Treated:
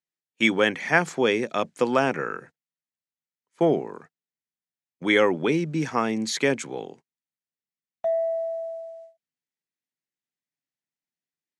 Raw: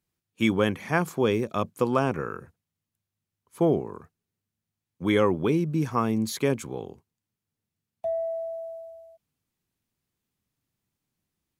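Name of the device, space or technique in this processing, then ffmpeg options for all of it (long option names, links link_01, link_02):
television speaker: -af "highpass=frequency=180:width=0.5412,highpass=frequency=180:width=1.3066,equalizer=frequency=200:width_type=q:width=4:gain=-8,equalizer=frequency=1100:width_type=q:width=4:gain=-8,equalizer=frequency=1900:width_type=q:width=4:gain=6,lowpass=frequency=8200:width=0.5412,lowpass=frequency=8200:width=1.3066,agate=range=-17dB:threshold=-50dB:ratio=16:detection=peak,equalizer=frequency=360:width=1.1:gain=-5.5,volume=6.5dB"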